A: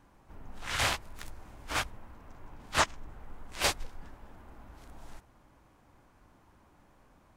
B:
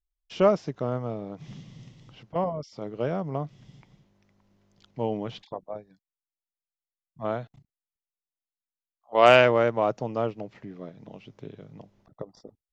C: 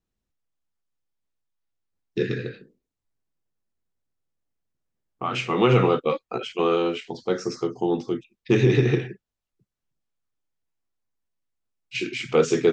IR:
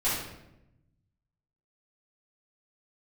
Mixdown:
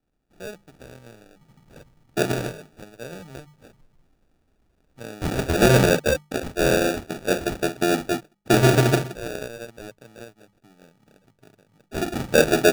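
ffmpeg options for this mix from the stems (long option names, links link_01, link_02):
-filter_complex "[0:a]volume=-15dB[link_01];[1:a]dynaudnorm=framelen=110:gausssize=21:maxgain=8.5dB,volume=-17.5dB,asplit=2[link_02][link_03];[2:a]volume=2dB[link_04];[link_03]apad=whole_len=325000[link_05];[link_01][link_05]sidechaincompress=threshold=-41dB:ratio=8:attack=10:release=894[link_06];[link_06][link_02][link_04]amix=inputs=3:normalize=0,bandreject=frequency=50:width_type=h:width=6,bandreject=frequency=100:width_type=h:width=6,bandreject=frequency=150:width_type=h:width=6,bandreject=frequency=200:width_type=h:width=6,adynamicequalizer=threshold=0.00501:dfrequency=5100:dqfactor=1.2:tfrequency=5100:tqfactor=1.2:attack=5:release=100:ratio=0.375:range=2.5:mode=boostabove:tftype=bell,acrusher=samples=42:mix=1:aa=0.000001"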